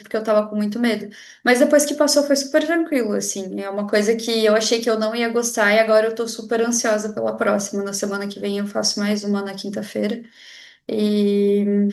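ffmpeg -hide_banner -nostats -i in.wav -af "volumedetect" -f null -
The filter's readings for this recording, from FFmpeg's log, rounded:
mean_volume: -19.7 dB
max_volume: -1.9 dB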